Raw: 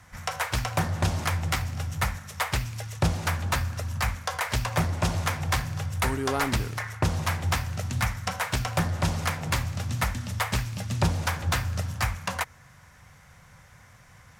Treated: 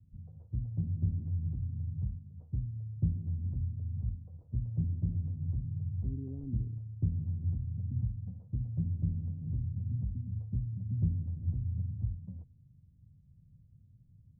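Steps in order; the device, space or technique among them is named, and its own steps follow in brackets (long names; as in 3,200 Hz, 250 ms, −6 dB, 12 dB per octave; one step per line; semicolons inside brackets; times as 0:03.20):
the neighbour's flat through the wall (low-pass filter 260 Hz 24 dB per octave; parametric band 110 Hz +4 dB 0.77 octaves)
level −7 dB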